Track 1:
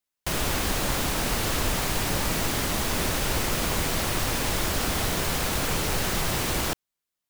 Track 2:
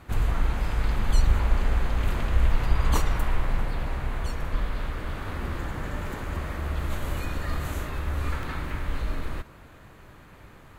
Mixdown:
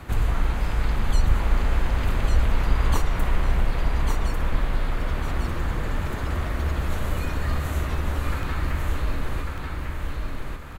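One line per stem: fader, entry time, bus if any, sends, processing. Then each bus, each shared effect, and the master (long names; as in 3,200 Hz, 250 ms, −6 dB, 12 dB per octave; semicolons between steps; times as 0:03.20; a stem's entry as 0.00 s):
−10.0 dB, 1.45 s, no send, no echo send, gate on every frequency bin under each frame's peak −15 dB strong
+1.5 dB, 0.00 s, no send, echo send −5.5 dB, no processing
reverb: not used
echo: repeating echo 1,147 ms, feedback 25%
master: floating-point word with a short mantissa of 8 bits; multiband upward and downward compressor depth 40%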